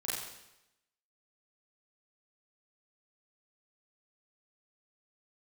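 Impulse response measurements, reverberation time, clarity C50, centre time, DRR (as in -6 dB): 0.90 s, 0.5 dB, 76 ms, -8.5 dB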